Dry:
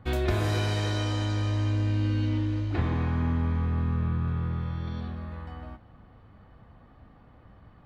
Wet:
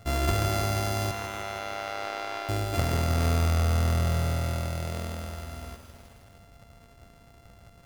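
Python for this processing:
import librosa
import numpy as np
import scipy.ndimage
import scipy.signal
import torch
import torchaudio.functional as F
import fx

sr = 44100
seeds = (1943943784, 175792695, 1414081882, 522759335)

y = np.r_[np.sort(x[:len(x) // 64 * 64].reshape(-1, 64), axis=1).ravel(), x[len(x) // 64 * 64:]]
y = fx.bandpass_edges(y, sr, low_hz=670.0, high_hz=3600.0, at=(1.11, 2.49))
y = fx.echo_crushed(y, sr, ms=159, feedback_pct=80, bits=8, wet_db=-10.0)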